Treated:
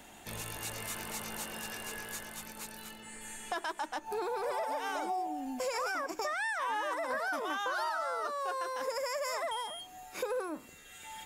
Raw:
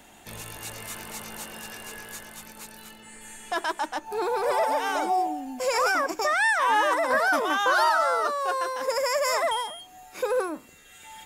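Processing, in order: compression 4:1, threshold -32 dBFS, peak gain reduction 12 dB; trim -1.5 dB

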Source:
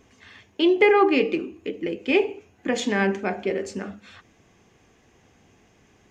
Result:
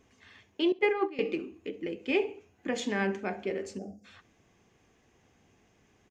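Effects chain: 0.72–1.19 s: gate -15 dBFS, range -17 dB; 3.78–4.05 s: time-frequency box 800–4600 Hz -29 dB; feedback delay 67 ms, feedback 25%, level -23 dB; trim -7.5 dB

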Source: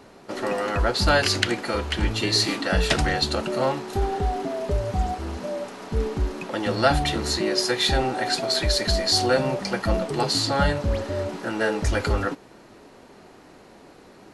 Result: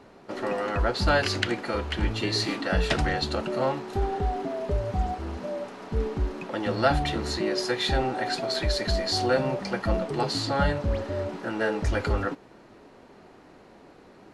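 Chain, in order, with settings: treble shelf 5.3 kHz -10.5 dB; trim -2.5 dB

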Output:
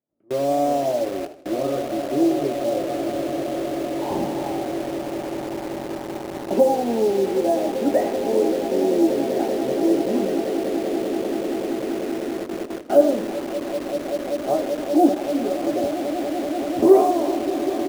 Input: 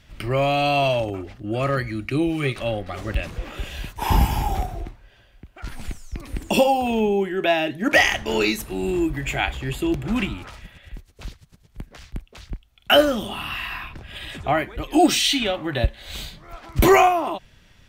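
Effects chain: on a send: echo with a slow build-up 193 ms, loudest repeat 8, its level -12.5 dB; on the sum: gate with hold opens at -17 dBFS; Butterworth band-pass 400 Hz, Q 0.99; doubling 21 ms -8 dB; in parallel at -3.5 dB: bit crusher 5-bit; on the sum: modulated delay 83 ms, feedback 46%, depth 183 cents, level -13.5 dB; trim -3 dB

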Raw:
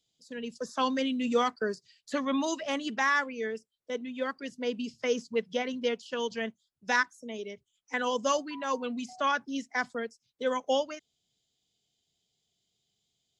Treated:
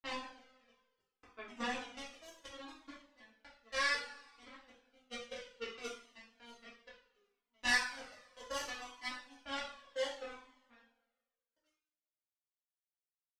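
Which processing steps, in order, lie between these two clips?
slices played last to first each 246 ms, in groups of 4; power-law waveshaper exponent 3; two-slope reverb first 0.48 s, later 1.5 s, from -18 dB, DRR -9.5 dB; Shepard-style flanger falling 0.66 Hz; trim -3.5 dB

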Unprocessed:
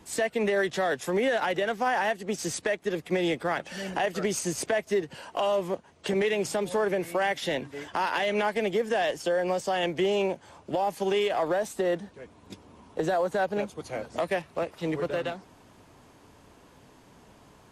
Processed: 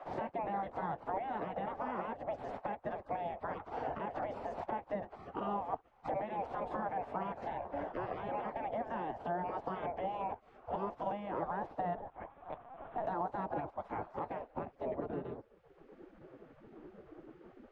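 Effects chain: 7.72–8.29 s: resonant low shelf 190 Hz +11.5 dB, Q 3; spectral gate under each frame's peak -15 dB weak; peak limiter -30.5 dBFS, peak gain reduction 11 dB; low-pass sweep 760 Hz -> 330 Hz, 13.96–16.13 s; 11.96–13.07 s: LPC vocoder at 8 kHz pitch kept; three bands compressed up and down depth 70%; trim +4 dB

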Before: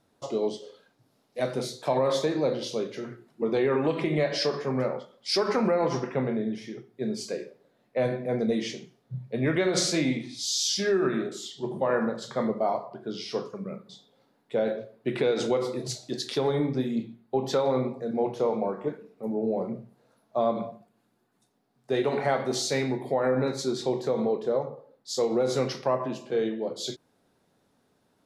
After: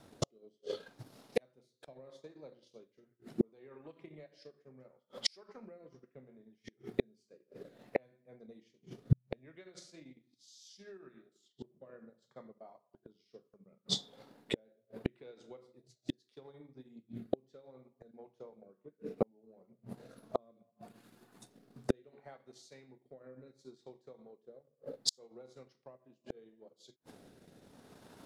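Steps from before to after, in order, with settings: inverted gate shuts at -32 dBFS, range -40 dB; rotary cabinet horn 0.7 Hz; transient shaper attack +7 dB, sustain -7 dB; trim +12 dB

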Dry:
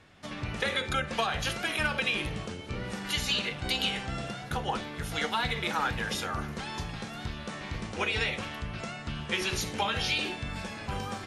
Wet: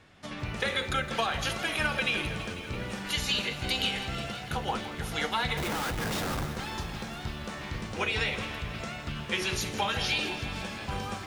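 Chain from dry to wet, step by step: 5.57–6.46 s: Schmitt trigger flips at -34.5 dBFS; bit-crushed delay 165 ms, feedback 80%, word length 9-bit, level -13 dB

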